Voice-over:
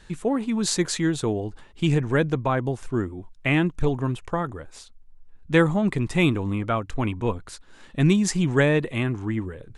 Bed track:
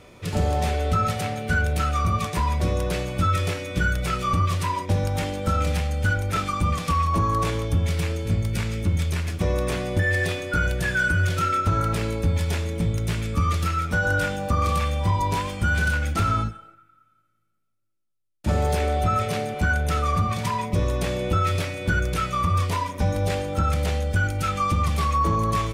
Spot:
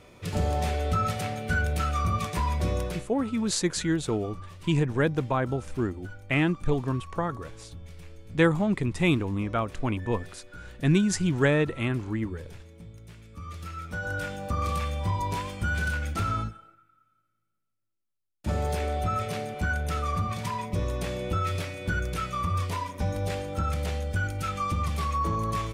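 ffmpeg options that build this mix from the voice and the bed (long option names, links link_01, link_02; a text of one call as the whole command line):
ffmpeg -i stem1.wav -i stem2.wav -filter_complex "[0:a]adelay=2850,volume=-3dB[link_01];[1:a]volume=12dB,afade=type=out:start_time=2.79:duration=0.29:silence=0.125893,afade=type=in:start_time=13.3:duration=1.38:silence=0.158489[link_02];[link_01][link_02]amix=inputs=2:normalize=0" out.wav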